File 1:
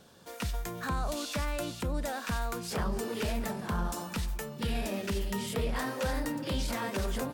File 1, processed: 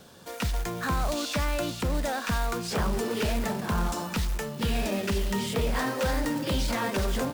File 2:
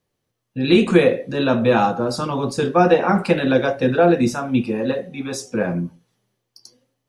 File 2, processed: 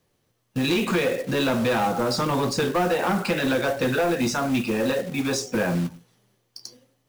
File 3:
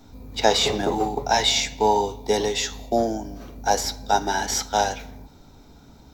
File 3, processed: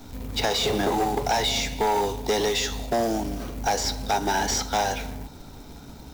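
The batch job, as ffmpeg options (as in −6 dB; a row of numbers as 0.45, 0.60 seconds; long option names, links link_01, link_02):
-filter_complex "[0:a]acrossover=split=810|7900[link_01][link_02][link_03];[link_01]acompressor=threshold=-26dB:ratio=4[link_04];[link_02]acompressor=threshold=-29dB:ratio=4[link_05];[link_03]acompressor=threshold=-56dB:ratio=4[link_06];[link_04][link_05][link_06]amix=inputs=3:normalize=0,acrusher=bits=3:mode=log:mix=0:aa=0.000001,asoftclip=type=tanh:threshold=-23dB,volume=6dB"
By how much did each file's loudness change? +5.0, −5.0, −2.5 LU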